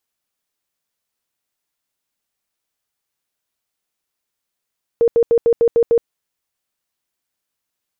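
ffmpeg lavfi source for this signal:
ffmpeg -f lavfi -i "aevalsrc='0.335*sin(2*PI*466*mod(t,0.15))*lt(mod(t,0.15),32/466)':duration=1.05:sample_rate=44100" out.wav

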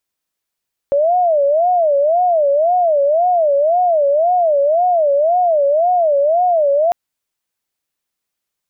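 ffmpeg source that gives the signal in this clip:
ffmpeg -f lavfi -i "aevalsrc='0.299*sin(2*PI*(642.5*t-84.5/(2*PI*1.9)*sin(2*PI*1.9*t)))':duration=6:sample_rate=44100" out.wav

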